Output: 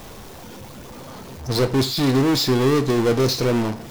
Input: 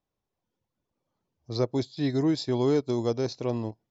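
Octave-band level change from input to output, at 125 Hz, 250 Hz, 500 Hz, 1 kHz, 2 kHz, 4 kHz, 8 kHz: +9.0 dB, +7.5 dB, +7.5 dB, +11.5 dB, +15.5 dB, +14.5 dB, can't be measured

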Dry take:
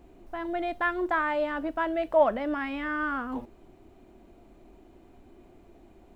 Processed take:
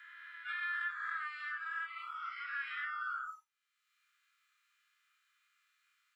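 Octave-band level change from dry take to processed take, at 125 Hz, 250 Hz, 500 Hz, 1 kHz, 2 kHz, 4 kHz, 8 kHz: below −40 dB, below −40 dB, below −40 dB, −12.0 dB, −5.0 dB, −5.5 dB, can't be measured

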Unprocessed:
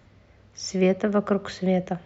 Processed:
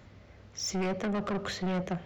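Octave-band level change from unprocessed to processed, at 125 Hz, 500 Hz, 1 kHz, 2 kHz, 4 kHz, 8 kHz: −7.0 dB, −10.5 dB, −4.5 dB, −3.5 dB, −1.0 dB, can't be measured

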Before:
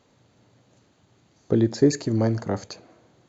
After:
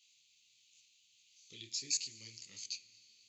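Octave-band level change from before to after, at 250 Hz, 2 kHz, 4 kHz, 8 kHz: −39.5 dB, −13.0 dB, −0.5 dB, can't be measured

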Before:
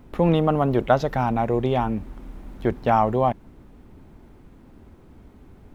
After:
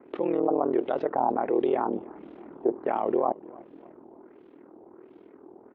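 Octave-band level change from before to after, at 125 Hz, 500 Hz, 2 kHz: −23.0, −3.0, −11.0 decibels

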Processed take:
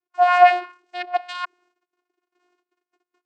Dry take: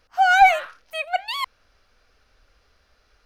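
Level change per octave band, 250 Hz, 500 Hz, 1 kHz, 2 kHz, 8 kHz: can't be measured, +8.0 dB, +0.5 dB, −5.0 dB, below −10 dB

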